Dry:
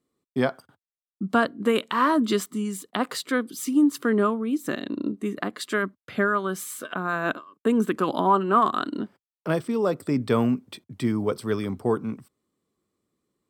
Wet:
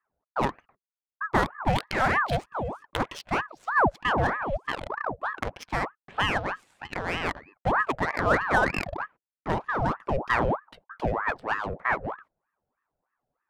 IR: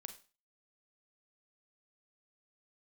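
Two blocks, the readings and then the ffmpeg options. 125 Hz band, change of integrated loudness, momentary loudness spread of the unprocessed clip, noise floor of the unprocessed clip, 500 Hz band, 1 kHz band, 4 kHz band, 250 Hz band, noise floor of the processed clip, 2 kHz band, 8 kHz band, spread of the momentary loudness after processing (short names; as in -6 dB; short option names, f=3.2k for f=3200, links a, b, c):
0.0 dB, -2.5 dB, 10 LU, under -85 dBFS, -4.5 dB, 0.0 dB, -1.0 dB, -10.5 dB, under -85 dBFS, +3.5 dB, -11.0 dB, 10 LU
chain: -af "adynamicsmooth=sensitivity=4:basefreq=1.2k,aeval=exprs='val(0)*sin(2*PI*880*n/s+880*0.7/3.2*sin(2*PI*3.2*n/s))':c=same"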